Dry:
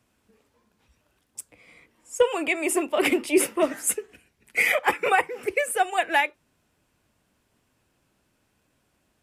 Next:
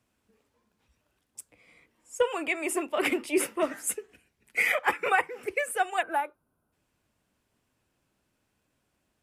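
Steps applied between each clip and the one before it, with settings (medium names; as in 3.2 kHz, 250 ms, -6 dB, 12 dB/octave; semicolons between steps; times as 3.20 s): dynamic bell 1.4 kHz, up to +5 dB, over -35 dBFS, Q 1.2; time-frequency box 6.02–6.73 s, 1.6–9 kHz -15 dB; trim -6 dB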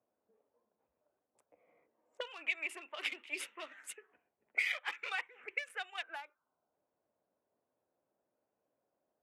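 local Wiener filter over 9 samples; auto-wah 590–3800 Hz, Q 2.1, up, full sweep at -25.5 dBFS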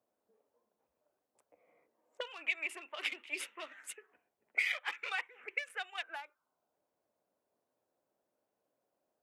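bass shelf 200 Hz -3.5 dB; trim +1 dB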